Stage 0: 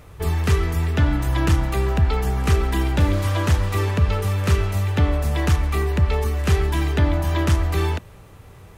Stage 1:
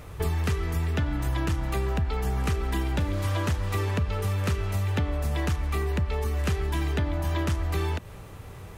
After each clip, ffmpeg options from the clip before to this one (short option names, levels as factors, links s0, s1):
-af "acompressor=threshold=0.0501:ratio=6,volume=1.26"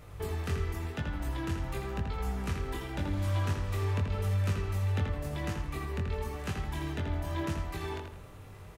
-filter_complex "[0:a]flanger=delay=19:depth=3.9:speed=0.91,asplit=2[s0][s1];[s1]adelay=82,lowpass=f=4700:p=1,volume=0.596,asplit=2[s2][s3];[s3]adelay=82,lowpass=f=4700:p=1,volume=0.37,asplit=2[s4][s5];[s5]adelay=82,lowpass=f=4700:p=1,volume=0.37,asplit=2[s6][s7];[s7]adelay=82,lowpass=f=4700:p=1,volume=0.37,asplit=2[s8][s9];[s9]adelay=82,lowpass=f=4700:p=1,volume=0.37[s10];[s0][s2][s4][s6][s8][s10]amix=inputs=6:normalize=0,volume=0.596"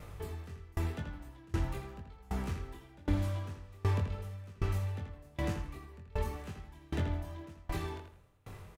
-filter_complex "[0:a]acrossover=split=750[s0][s1];[s1]asoftclip=type=tanh:threshold=0.01[s2];[s0][s2]amix=inputs=2:normalize=0,asplit=2[s3][s4];[s4]adelay=24,volume=0.237[s5];[s3][s5]amix=inputs=2:normalize=0,aeval=exprs='val(0)*pow(10,-28*if(lt(mod(1.3*n/s,1),2*abs(1.3)/1000),1-mod(1.3*n/s,1)/(2*abs(1.3)/1000),(mod(1.3*n/s,1)-2*abs(1.3)/1000)/(1-2*abs(1.3)/1000))/20)':c=same,volume=1.58"